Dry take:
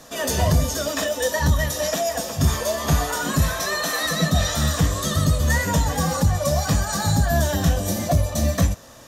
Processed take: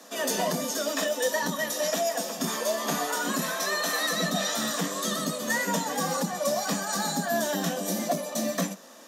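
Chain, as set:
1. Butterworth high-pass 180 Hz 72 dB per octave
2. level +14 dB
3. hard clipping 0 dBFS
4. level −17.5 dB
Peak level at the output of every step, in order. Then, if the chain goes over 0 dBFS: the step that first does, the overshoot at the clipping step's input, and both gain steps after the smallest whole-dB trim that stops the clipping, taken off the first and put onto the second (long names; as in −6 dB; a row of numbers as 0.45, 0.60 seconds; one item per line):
−9.5, +4.5, 0.0, −17.5 dBFS
step 2, 4.5 dB
step 2 +9 dB, step 4 −12.5 dB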